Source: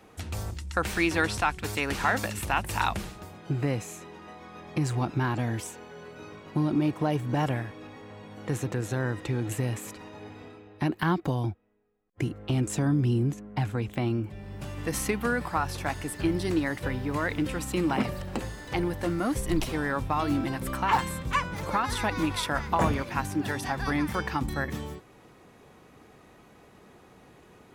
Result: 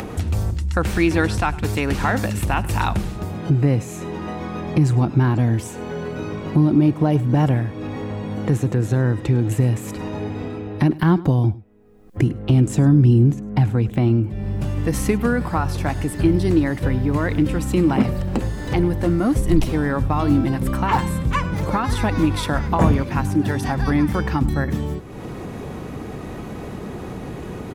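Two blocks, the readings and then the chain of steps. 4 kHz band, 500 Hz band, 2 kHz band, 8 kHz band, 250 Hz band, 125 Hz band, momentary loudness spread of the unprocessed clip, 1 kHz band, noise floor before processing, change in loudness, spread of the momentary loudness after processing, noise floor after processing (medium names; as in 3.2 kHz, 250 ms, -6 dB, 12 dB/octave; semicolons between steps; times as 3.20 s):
+2.5 dB, +8.0 dB, +3.0 dB, +2.5 dB, +10.5 dB, +12.5 dB, 15 LU, +4.5 dB, -55 dBFS, +9.0 dB, 13 LU, -33 dBFS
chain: bass shelf 470 Hz +11.5 dB; upward compressor, threshold -19 dBFS; delay 102 ms -20 dB; trim +1.5 dB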